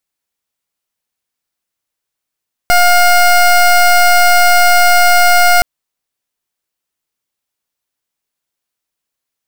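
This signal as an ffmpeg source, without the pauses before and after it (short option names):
-f lavfi -i "aevalsrc='0.422*(2*lt(mod(710*t,1),0.21)-1)':d=2.92:s=44100"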